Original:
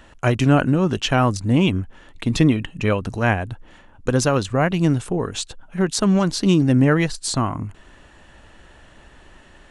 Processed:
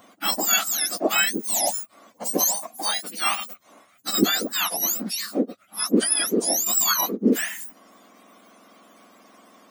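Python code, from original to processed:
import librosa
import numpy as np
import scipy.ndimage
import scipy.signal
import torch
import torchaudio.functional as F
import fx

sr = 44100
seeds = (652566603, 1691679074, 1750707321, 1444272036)

y = fx.octave_mirror(x, sr, pivot_hz=1400.0)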